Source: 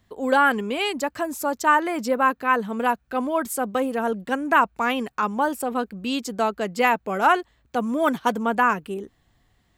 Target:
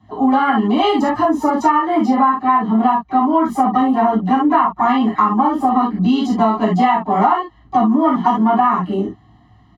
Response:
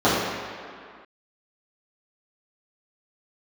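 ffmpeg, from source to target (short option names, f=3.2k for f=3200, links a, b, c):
-filter_complex "[0:a]lowpass=f=3.6k:p=1,asplit=2[a][b];[b]asetrate=66075,aresample=44100,atempo=0.66742,volume=-15dB[c];[a][c]amix=inputs=2:normalize=0,aecho=1:1:1:0.88[d];[1:a]atrim=start_sample=2205,atrim=end_sample=3528[e];[d][e]afir=irnorm=-1:irlink=0,acompressor=threshold=-1dB:ratio=12,volume=-9.5dB"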